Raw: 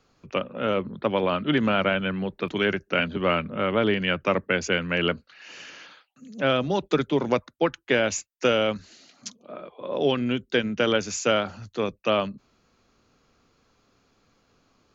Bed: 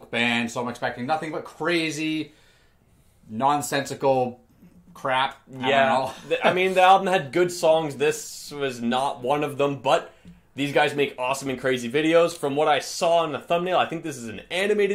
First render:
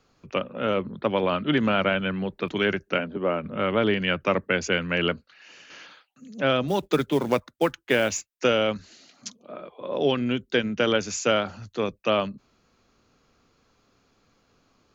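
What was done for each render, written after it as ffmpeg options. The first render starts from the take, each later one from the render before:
-filter_complex "[0:a]asplit=3[s0][s1][s2];[s0]afade=t=out:st=2.97:d=0.02[s3];[s1]bandpass=f=450:t=q:w=0.65,afade=t=in:st=2.97:d=0.02,afade=t=out:st=3.43:d=0.02[s4];[s2]afade=t=in:st=3.43:d=0.02[s5];[s3][s4][s5]amix=inputs=3:normalize=0,asettb=1/sr,asplit=3[s6][s7][s8];[s6]atrim=end=6.684[s9];[s7]atrim=start=6.68:end=8.34,asetpts=PTS-STARTPTS,afade=t=in:d=0.004:c=qsin,afade=t=out:st=1.656:d=0.004:c=qsin,acrusher=bits=6:mode=log:mix=0:aa=0.000001[s10];[s8]atrim=start=8.336[s11];[s9][s10]acrossfade=d=0.004:c1=hsin:c2=qsin[s12];[s12][s11]acrossfade=d=0.004:c1=qsin:c2=hsin,asplit=2[s13][s14];[s13]atrim=end=5.7,asetpts=PTS-STARTPTS,afade=t=out:st=5.02:d=0.68:silence=0.375837[s15];[s14]atrim=start=5.7,asetpts=PTS-STARTPTS,afade=t=in:d=0.004:c=hsin:silence=0.375837[s16];[s15][s16]concat=n=2:v=0:a=1"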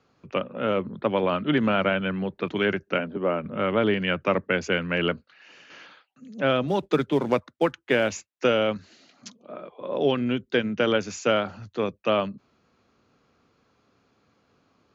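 -af "highpass=78,aemphasis=mode=reproduction:type=50fm"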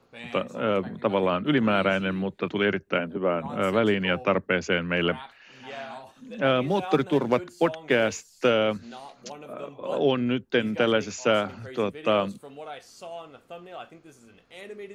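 -filter_complex "[1:a]volume=0.112[s0];[0:a][s0]amix=inputs=2:normalize=0"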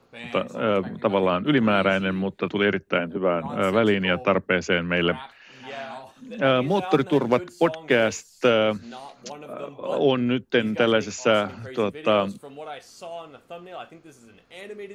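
-af "volume=1.33"

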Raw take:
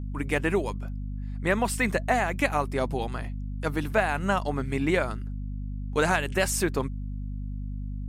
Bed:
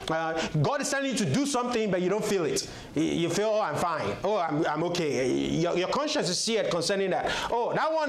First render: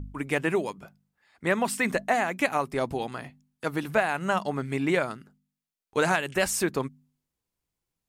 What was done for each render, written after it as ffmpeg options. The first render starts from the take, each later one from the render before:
-af "bandreject=f=50:t=h:w=4,bandreject=f=100:t=h:w=4,bandreject=f=150:t=h:w=4,bandreject=f=200:t=h:w=4,bandreject=f=250:t=h:w=4"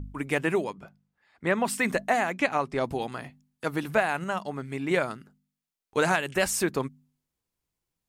-filter_complex "[0:a]asettb=1/sr,asplit=3[s0][s1][s2];[s0]atrim=end=0.644[s3];[s1]atrim=start=0.64:end=1.67,asetpts=PTS-STARTPTS,afade=t=in:d=0.004:c=qsin,afade=t=out:st=1.026:d=0.004:c=qsin,lowpass=f=3800:p=1[s4];[s2]atrim=start=1.666[s5];[s3][s4]acrossfade=d=0.004:c1=hsin:c2=qsin[s6];[s6][s5]acrossfade=d=0.004:c1=qsin:c2=hsin,asettb=1/sr,asplit=3[s7][s8][s9];[s7]atrim=end=2.324[s10];[s8]atrim=start=2.32:end=2.84,asetpts=PTS-STARTPTS,afade=t=in:d=0.004:c=qsin,afade=t=out:st=0.516:d=0.004:c=qsin,lowpass=6200[s11];[s9]atrim=start=2.836[s12];[s10][s11]acrossfade=d=0.004:c1=hsin:c2=qsin[s13];[s13][s12]acrossfade=d=0.004:c1=qsin:c2=hsin,asplit=3[s14][s15][s16];[s14]atrim=end=4.242[s17];[s15]atrim=start=4.238:end=4.912,asetpts=PTS-STARTPTS,volume=0.596[s18];[s16]atrim=start=4.908[s19];[s17][s18]acrossfade=d=0.004:c1=hsin:c2=hsin[s20];[s20][s19]acrossfade=d=0.004:c1=hsin:c2=hsin"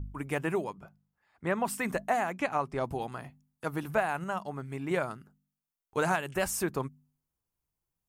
-af "equalizer=f=250:t=o:w=1:g=-5,equalizer=f=500:t=o:w=1:g=-4,equalizer=f=2000:t=o:w=1:g=-6,equalizer=f=4000:t=o:w=1:g=-8,equalizer=f=8000:t=o:w=1:g=-4"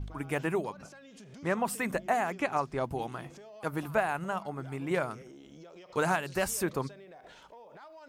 -filter_complex "[1:a]volume=0.0596[s0];[0:a][s0]amix=inputs=2:normalize=0"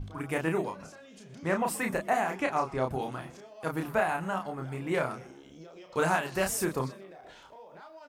-filter_complex "[0:a]asplit=2[s0][s1];[s1]adelay=31,volume=0.631[s2];[s0][s2]amix=inputs=2:normalize=0,asplit=4[s3][s4][s5][s6];[s4]adelay=123,afreqshift=87,volume=0.0794[s7];[s5]adelay=246,afreqshift=174,volume=0.0359[s8];[s6]adelay=369,afreqshift=261,volume=0.016[s9];[s3][s7][s8][s9]amix=inputs=4:normalize=0"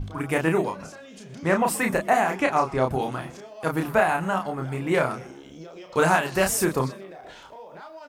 -af "volume=2.24"

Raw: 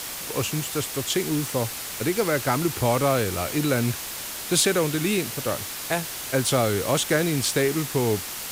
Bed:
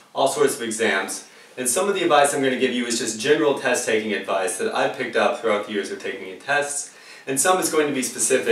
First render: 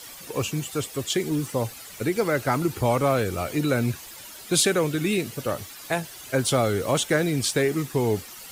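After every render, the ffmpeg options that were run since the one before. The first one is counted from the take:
-af "afftdn=nr=12:nf=-34"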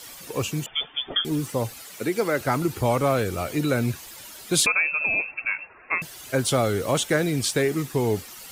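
-filter_complex "[0:a]asettb=1/sr,asplit=3[s0][s1][s2];[s0]atrim=end=0.664[s3];[s1]atrim=start=0.66:end=1.25,asetpts=PTS-STARTPTS,afade=t=in:d=0.004:c=qsin,afade=t=out:st=0.586:d=0.004:c=qsin,lowpass=f=3100:t=q:w=0.5098,lowpass=f=3100:t=q:w=0.6013,lowpass=f=3100:t=q:w=0.9,lowpass=f=3100:t=q:w=2.563,afreqshift=-3600[s4];[s2]atrim=start=1.246[s5];[s3][s4]acrossfade=d=0.004:c1=hsin:c2=qsin[s6];[s6][s5]acrossfade=d=0.004:c1=qsin:c2=hsin,asettb=1/sr,asplit=3[s7][s8][s9];[s7]atrim=end=1.824[s10];[s8]atrim=start=1.82:end=2.41,asetpts=PTS-STARTPTS,afade=t=in:d=0.004:c=qsin,afade=t=out:st=0.586:d=0.004:c=qsin,highpass=180[s11];[s9]atrim=start=2.406[s12];[s10][s11]acrossfade=d=0.004:c1=hsin:c2=qsin[s13];[s13][s12]acrossfade=d=0.004:c1=qsin:c2=hsin,asettb=1/sr,asplit=3[s14][s15][s16];[s14]atrim=end=4.664[s17];[s15]atrim=start=4.66:end=6.02,asetpts=PTS-STARTPTS,afade=t=in:d=0.004:c=qsin,afade=t=out:st=1.356:d=0.004:c=qsin,lowpass=f=2400:t=q:w=0.5098,lowpass=f=2400:t=q:w=0.6013,lowpass=f=2400:t=q:w=0.9,lowpass=f=2400:t=q:w=2.563,afreqshift=-2800[s18];[s16]atrim=start=6.016[s19];[s17][s18]acrossfade=d=0.004:c1=hsin:c2=qsin[s20];[s20][s19]acrossfade=d=0.004:c1=qsin:c2=hsin"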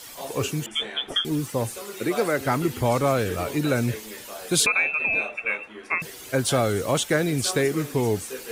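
-filter_complex "[1:a]volume=0.141[s0];[0:a][s0]amix=inputs=2:normalize=0"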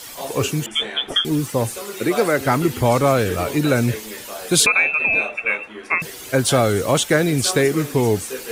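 -af "volume=1.88"

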